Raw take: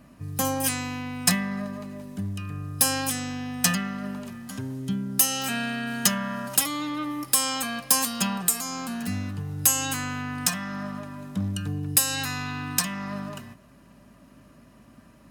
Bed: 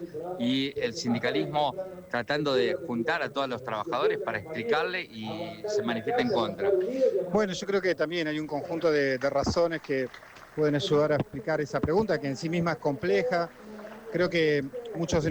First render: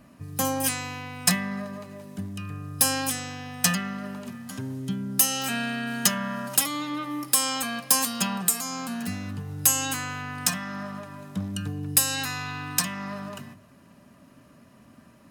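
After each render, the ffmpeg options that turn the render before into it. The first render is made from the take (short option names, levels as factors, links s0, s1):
-af "bandreject=f=50:t=h:w=4,bandreject=f=100:t=h:w=4,bandreject=f=150:t=h:w=4,bandreject=f=200:t=h:w=4,bandreject=f=250:t=h:w=4,bandreject=f=300:t=h:w=4,bandreject=f=350:t=h:w=4"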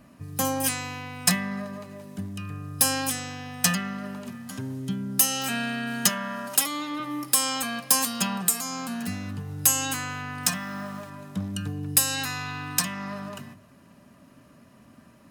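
-filter_complex "[0:a]asettb=1/sr,asplit=3[s0][s1][s2];[s0]atrim=end=6.094[s3];[s1]atrim=start=6.09:end=7,asetpts=PTS-STARTPTS,afade=t=in:d=0.004:c=qsin,afade=t=out:st=0.906:d=0.004:c=qsin,highpass=230[s4];[s2]atrim=start=6.996[s5];[s3][s4]acrossfade=d=0.004:c1=hsin:c2=qsin[s6];[s6][s5]acrossfade=d=0.004:c1=qsin:c2=hsin,asettb=1/sr,asplit=3[s7][s8][s9];[s7]atrim=end=10.434[s10];[s8]atrim=start=10.43:end=11.1,asetpts=PTS-STARTPTS,afade=t=in:d=0.004:c=qsin,afade=t=out:st=0.666:d=0.004:c=qsin,acrusher=bits=7:mix=0:aa=0.5[s11];[s9]atrim=start=11.096[s12];[s10][s11]acrossfade=d=0.004:c1=hsin:c2=qsin[s13];[s13][s12]acrossfade=d=0.004:c1=qsin:c2=hsin"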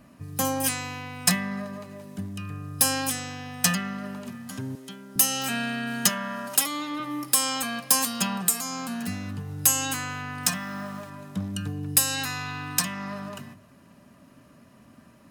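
-filter_complex "[0:a]asettb=1/sr,asplit=3[s0][s1][s2];[s0]atrim=end=4.754[s3];[s1]atrim=start=4.75:end=5.16,asetpts=PTS-STARTPTS,afade=t=in:d=0.004:c=qsin,afade=t=out:st=0.406:d=0.004:c=qsin,highpass=450[s4];[s2]atrim=start=5.156[s5];[s3][s4]acrossfade=d=0.004:c1=hsin:c2=qsin[s6];[s6][s5]acrossfade=d=0.004:c1=qsin:c2=hsin"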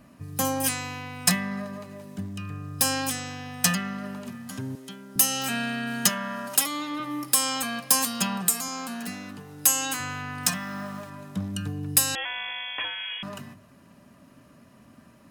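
-filter_complex "[0:a]asettb=1/sr,asplit=3[s0][s1][s2];[s0]atrim=end=2.154[s3];[s1]atrim=start=2.15:end=3.26,asetpts=PTS-STARTPTS,afade=t=in:d=0.004:c=qsin,afade=t=out:st=1.106:d=0.004:c=qsin,equalizer=f=11000:w=2.6:g=-6.5[s4];[s2]atrim=start=3.256[s5];[s3][s4]acrossfade=d=0.004:c1=hsin:c2=qsin[s6];[s6][s5]acrossfade=d=0.004:c1=qsin:c2=hsin,asettb=1/sr,asplit=3[s7][s8][s9];[s7]atrim=end=8.684[s10];[s8]atrim=start=8.68:end=10,asetpts=PTS-STARTPTS,afade=t=in:d=0.004:c=qsin,afade=t=out:st=1.316:d=0.004:c=qsin,highpass=240[s11];[s9]atrim=start=9.996[s12];[s10][s11]acrossfade=d=0.004:c1=hsin:c2=qsin[s13];[s13][s12]acrossfade=d=0.004:c1=qsin:c2=hsin,asettb=1/sr,asplit=3[s14][s15][s16];[s14]atrim=end=12.154[s17];[s15]atrim=start=12.15:end=13.23,asetpts=PTS-STARTPTS,afade=t=in:d=0.004:c=qsin,afade=t=out:st=1.076:d=0.004:c=qsin,lowpass=f=3000:t=q:w=0.5098,lowpass=f=3000:t=q:w=0.6013,lowpass=f=3000:t=q:w=0.9,lowpass=f=3000:t=q:w=2.563,afreqshift=-3500[s18];[s16]atrim=start=13.226[s19];[s17][s18]acrossfade=d=0.004:c1=hsin:c2=qsin[s20];[s20][s19]acrossfade=d=0.004:c1=qsin:c2=hsin"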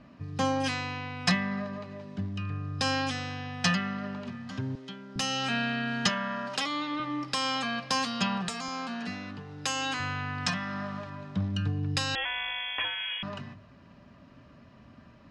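-af "lowpass=f=4900:w=0.5412,lowpass=f=4900:w=1.3066,asubboost=boost=2:cutoff=120"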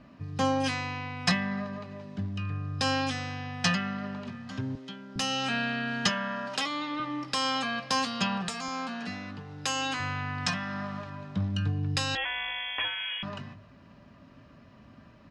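-filter_complex "[0:a]asplit=2[s0][s1];[s1]adelay=19,volume=0.2[s2];[s0][s2]amix=inputs=2:normalize=0"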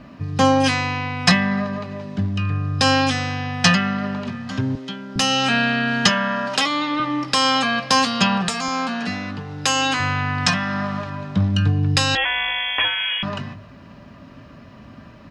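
-af "volume=3.55,alimiter=limit=0.891:level=0:latency=1"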